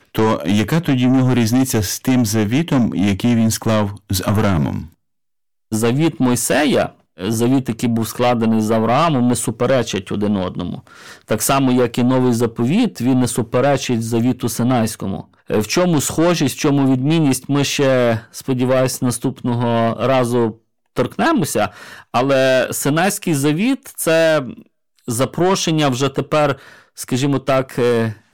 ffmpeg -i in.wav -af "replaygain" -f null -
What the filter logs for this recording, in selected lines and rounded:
track_gain = -1.7 dB
track_peak = 0.224